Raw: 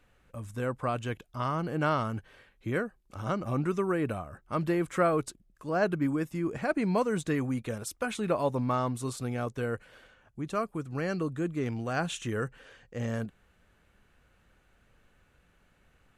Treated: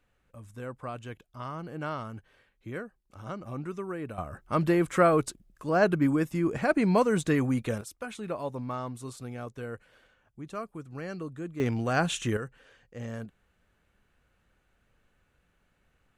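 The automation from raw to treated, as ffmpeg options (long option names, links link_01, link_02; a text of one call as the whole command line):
ffmpeg -i in.wav -af "asetnsamples=nb_out_samples=441:pad=0,asendcmd='4.18 volume volume 4dB;7.81 volume volume -6dB;11.6 volume volume 4.5dB;12.37 volume volume -5dB',volume=-7dB" out.wav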